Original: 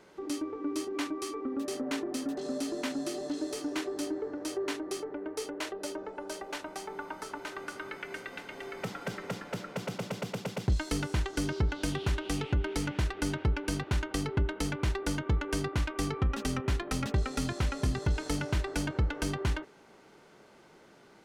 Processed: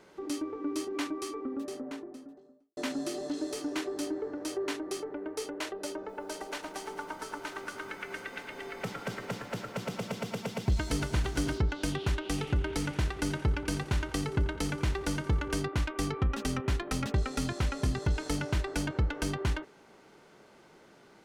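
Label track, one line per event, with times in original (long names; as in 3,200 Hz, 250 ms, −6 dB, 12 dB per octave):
1.070000	2.770000	fade out and dull
5.980000	11.580000	feedback echo at a low word length 111 ms, feedback 80%, word length 10 bits, level −11 dB
12.250000	15.550000	repeating echo 88 ms, feedback 53%, level −15 dB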